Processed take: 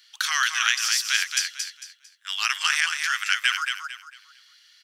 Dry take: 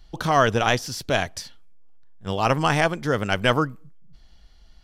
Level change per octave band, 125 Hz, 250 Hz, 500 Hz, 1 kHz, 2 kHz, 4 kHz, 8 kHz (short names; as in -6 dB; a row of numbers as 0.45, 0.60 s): under -40 dB, under -40 dB, under -40 dB, -7.5 dB, +3.5 dB, +6.5 dB, +10.5 dB